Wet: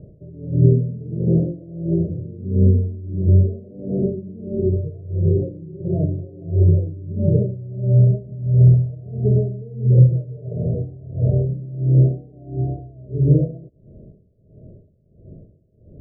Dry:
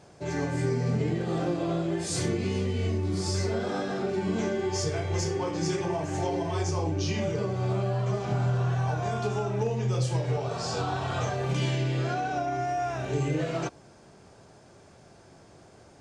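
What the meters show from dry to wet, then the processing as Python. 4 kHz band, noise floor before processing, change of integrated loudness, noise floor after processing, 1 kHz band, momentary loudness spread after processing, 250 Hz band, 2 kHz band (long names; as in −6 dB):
below −40 dB, −54 dBFS, +9.5 dB, −54 dBFS, below −15 dB, 15 LU, +7.5 dB, below −40 dB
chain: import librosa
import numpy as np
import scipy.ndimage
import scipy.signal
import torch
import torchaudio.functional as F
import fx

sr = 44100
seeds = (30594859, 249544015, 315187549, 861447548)

y = scipy.signal.sosfilt(scipy.signal.cheby1(6, 3, 640.0, 'lowpass', fs=sr, output='sos'), x)
y = fx.tilt_eq(y, sr, slope=-4.5)
y = y * 10.0 ** (-22 * (0.5 - 0.5 * np.cos(2.0 * np.pi * 1.5 * np.arange(len(y)) / sr)) / 20.0)
y = y * librosa.db_to_amplitude(5.0)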